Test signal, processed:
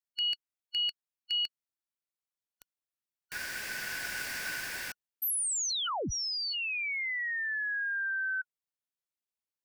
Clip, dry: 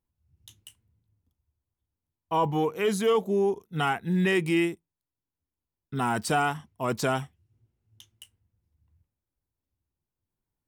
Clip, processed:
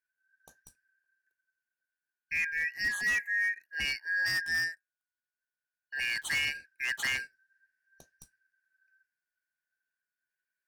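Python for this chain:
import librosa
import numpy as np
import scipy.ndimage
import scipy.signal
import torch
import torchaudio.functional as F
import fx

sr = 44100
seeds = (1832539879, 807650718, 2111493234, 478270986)

y = fx.band_shuffle(x, sr, order='3142')
y = fx.rider(y, sr, range_db=4, speed_s=2.0)
y = 10.0 ** (-18.5 / 20.0) * (np.abs((y / 10.0 ** (-18.5 / 20.0) + 3.0) % 4.0 - 2.0) - 1.0)
y = y * 10.0 ** (-5.0 / 20.0)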